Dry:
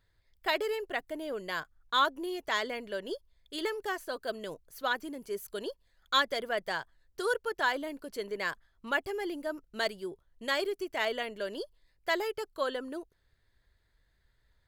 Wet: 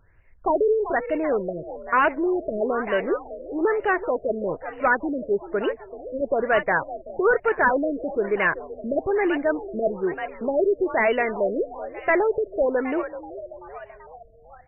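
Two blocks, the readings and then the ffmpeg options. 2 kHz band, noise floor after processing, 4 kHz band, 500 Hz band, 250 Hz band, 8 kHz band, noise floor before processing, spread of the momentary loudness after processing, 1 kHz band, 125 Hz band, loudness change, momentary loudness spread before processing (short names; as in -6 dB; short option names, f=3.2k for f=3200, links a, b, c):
+8.0 dB, -50 dBFS, -10.0 dB, +13.0 dB, +13.5 dB, under -30 dB, -72 dBFS, 11 LU, +9.0 dB, +14.5 dB, +10.0 dB, 12 LU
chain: -filter_complex "[0:a]asplit=8[a][b][c][d][e][f][g][h];[b]adelay=383,afreqshift=50,volume=-14.5dB[i];[c]adelay=766,afreqshift=100,volume=-18.7dB[j];[d]adelay=1149,afreqshift=150,volume=-22.8dB[k];[e]adelay=1532,afreqshift=200,volume=-27dB[l];[f]adelay=1915,afreqshift=250,volume=-31.1dB[m];[g]adelay=2298,afreqshift=300,volume=-35.3dB[n];[h]adelay=2681,afreqshift=350,volume=-39.4dB[o];[a][i][j][k][l][m][n][o]amix=inputs=8:normalize=0,aeval=exprs='0.224*sin(PI/2*3.16*val(0)/0.224)':c=same,afftfilt=real='re*lt(b*sr/1024,650*pow(3000/650,0.5+0.5*sin(2*PI*1.1*pts/sr)))':imag='im*lt(b*sr/1024,650*pow(3000/650,0.5+0.5*sin(2*PI*1.1*pts/sr)))':win_size=1024:overlap=0.75"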